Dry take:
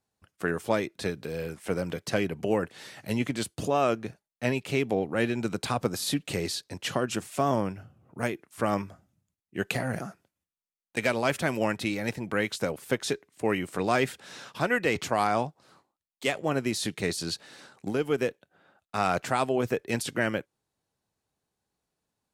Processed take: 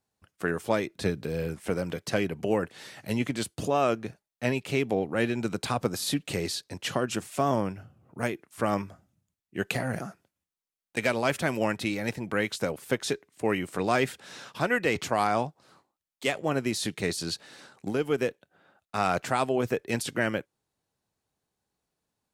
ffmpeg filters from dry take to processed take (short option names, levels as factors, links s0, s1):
-filter_complex "[0:a]asettb=1/sr,asplit=3[s0][s1][s2];[s0]atrim=end=0.894[s3];[s1]atrim=start=0.89:end=1.7,asetpts=PTS-STARTPTS,afade=t=in:d=0.004:c=qsin,afade=t=out:st=0.806:d=0.004:c=qsin,lowshelf=f=310:g=6.5[s4];[s2]atrim=start=1.696[s5];[s3][s4]acrossfade=d=0.004:c1=hsin:c2=qsin[s6];[s6][s5]acrossfade=d=0.004:c1=qsin:c2=hsin"